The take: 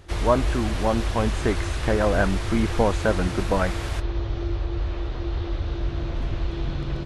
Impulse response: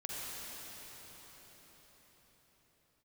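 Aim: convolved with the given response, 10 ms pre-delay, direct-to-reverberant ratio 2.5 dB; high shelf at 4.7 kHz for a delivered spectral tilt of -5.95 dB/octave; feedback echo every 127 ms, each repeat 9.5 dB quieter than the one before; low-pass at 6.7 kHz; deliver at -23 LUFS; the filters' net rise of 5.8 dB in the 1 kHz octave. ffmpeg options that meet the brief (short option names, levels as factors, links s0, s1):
-filter_complex "[0:a]lowpass=6700,equalizer=f=1000:t=o:g=7.5,highshelf=f=4700:g=-7.5,aecho=1:1:127|254|381|508:0.335|0.111|0.0365|0.012,asplit=2[s0][s1];[1:a]atrim=start_sample=2205,adelay=10[s2];[s1][s2]afir=irnorm=-1:irlink=0,volume=0.562[s3];[s0][s3]amix=inputs=2:normalize=0,volume=0.841"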